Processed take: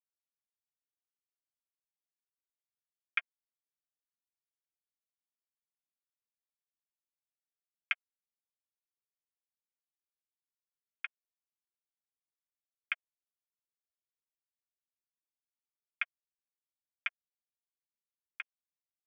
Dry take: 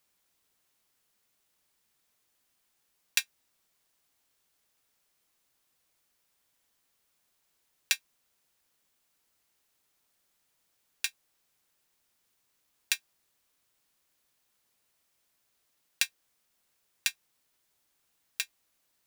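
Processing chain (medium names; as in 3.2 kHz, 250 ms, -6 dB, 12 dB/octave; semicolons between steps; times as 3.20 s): peaking EQ 2.3 kHz -3 dB 2.1 oct; crossover distortion -33 dBFS; ring modulator 470 Hz; static phaser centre 1.6 kHz, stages 4; mistuned SSB +220 Hz 500–2800 Hz; trim +11.5 dB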